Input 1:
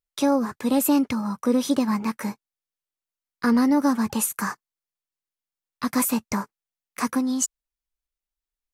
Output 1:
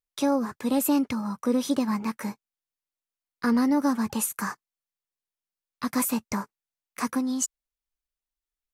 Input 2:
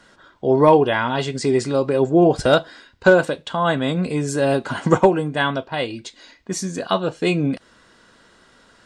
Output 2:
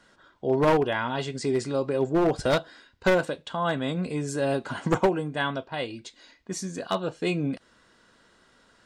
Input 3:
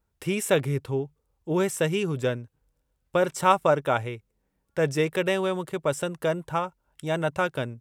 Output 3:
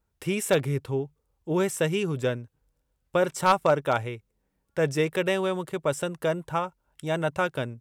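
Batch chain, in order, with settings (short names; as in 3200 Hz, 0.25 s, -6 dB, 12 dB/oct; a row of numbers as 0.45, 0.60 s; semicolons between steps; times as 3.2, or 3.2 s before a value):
one-sided fold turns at -11 dBFS; match loudness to -27 LUFS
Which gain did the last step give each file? -3.0, -7.5, -0.5 dB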